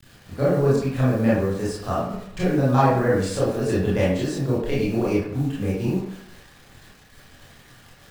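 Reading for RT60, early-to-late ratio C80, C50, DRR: 0.70 s, 4.5 dB, 0.0 dB, −8.5 dB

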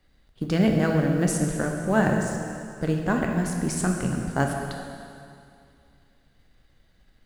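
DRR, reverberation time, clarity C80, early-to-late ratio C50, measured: 1.5 dB, 2.4 s, 4.5 dB, 3.5 dB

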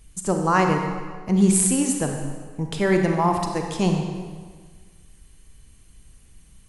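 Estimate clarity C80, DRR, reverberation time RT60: 5.5 dB, 3.0 dB, 1.6 s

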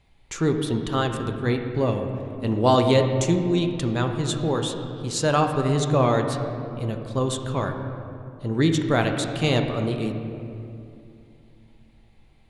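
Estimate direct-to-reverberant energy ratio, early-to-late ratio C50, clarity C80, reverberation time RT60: 4.0 dB, 6.0 dB, 7.0 dB, 2.6 s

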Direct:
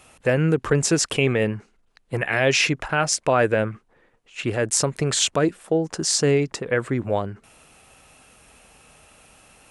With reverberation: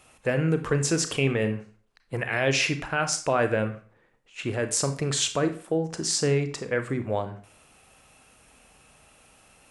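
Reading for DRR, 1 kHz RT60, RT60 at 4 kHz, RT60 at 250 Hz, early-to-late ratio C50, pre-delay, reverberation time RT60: 8.0 dB, 0.45 s, 0.35 s, 0.45 s, 12.0 dB, 28 ms, 0.45 s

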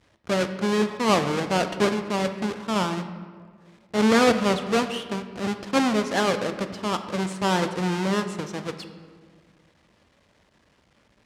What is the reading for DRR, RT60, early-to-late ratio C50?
7.5 dB, 1.7 s, 10.0 dB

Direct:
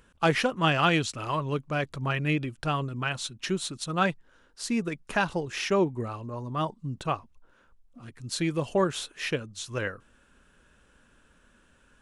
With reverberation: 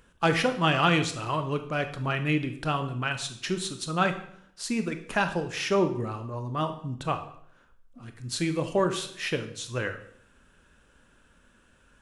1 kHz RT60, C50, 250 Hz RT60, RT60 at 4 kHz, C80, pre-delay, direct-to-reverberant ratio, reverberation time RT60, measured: 0.60 s, 11.0 dB, 0.75 s, 0.60 s, 14.0 dB, 20 ms, 7.5 dB, 0.65 s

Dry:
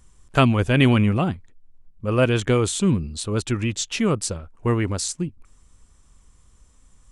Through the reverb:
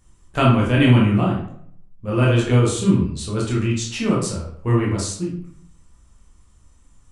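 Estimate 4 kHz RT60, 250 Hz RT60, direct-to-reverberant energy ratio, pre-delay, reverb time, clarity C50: 0.40 s, 0.75 s, −4.5 dB, 14 ms, 0.65 s, 3.5 dB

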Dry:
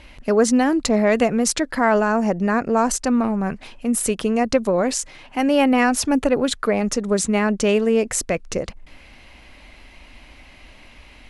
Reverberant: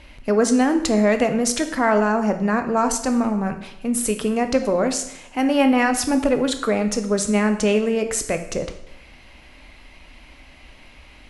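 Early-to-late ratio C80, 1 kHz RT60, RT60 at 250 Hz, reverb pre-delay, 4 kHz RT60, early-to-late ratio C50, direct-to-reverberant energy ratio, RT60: 13.0 dB, 0.80 s, 0.80 s, 6 ms, 0.75 s, 10.0 dB, 7.0 dB, 0.80 s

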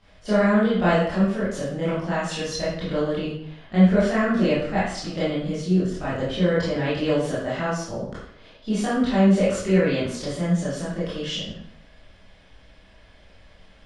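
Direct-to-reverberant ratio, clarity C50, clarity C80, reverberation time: −11.5 dB, 0.0 dB, 4.5 dB, 0.70 s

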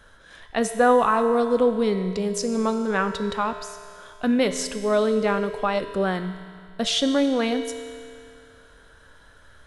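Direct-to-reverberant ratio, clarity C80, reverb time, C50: 7.0 dB, 9.5 dB, 2.3 s, 8.5 dB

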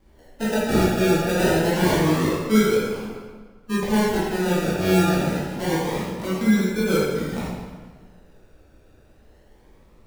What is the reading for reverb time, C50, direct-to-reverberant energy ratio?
1.5 s, −2.0 dB, −9.0 dB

